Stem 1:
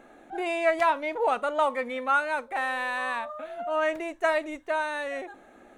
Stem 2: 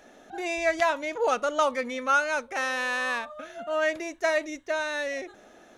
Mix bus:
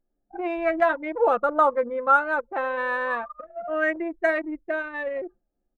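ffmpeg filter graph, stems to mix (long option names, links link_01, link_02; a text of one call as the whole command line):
ffmpeg -i stem1.wav -i stem2.wav -filter_complex "[0:a]volume=-5dB[link_01];[1:a]lowpass=frequency=1800:width=0.5412,lowpass=frequency=1800:width=1.3066,aecho=1:1:5.8:0.6,agate=range=-33dB:threshold=-42dB:ratio=3:detection=peak,volume=3dB[link_02];[link_01][link_02]amix=inputs=2:normalize=0,anlmdn=100" out.wav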